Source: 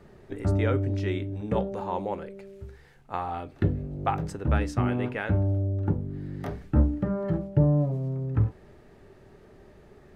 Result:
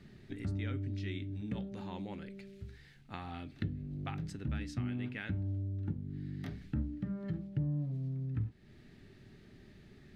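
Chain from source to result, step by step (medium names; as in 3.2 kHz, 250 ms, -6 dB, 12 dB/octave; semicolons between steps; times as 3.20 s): graphic EQ 125/250/500/1000/2000/4000 Hz +5/+7/-9/-8/+5/+9 dB; compression 2:1, threshold -35 dBFS, peak gain reduction 12.5 dB; trim -6 dB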